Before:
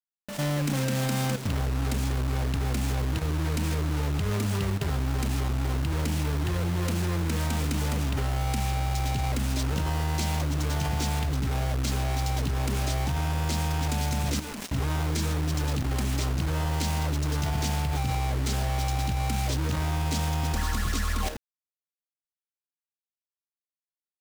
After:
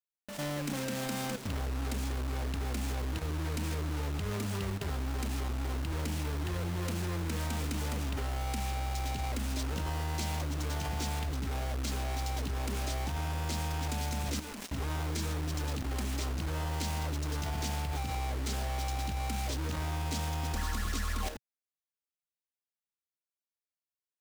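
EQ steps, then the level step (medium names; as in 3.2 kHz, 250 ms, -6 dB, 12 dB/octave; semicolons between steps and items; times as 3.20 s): peaking EQ 130 Hz -9 dB 0.5 oct; -5.5 dB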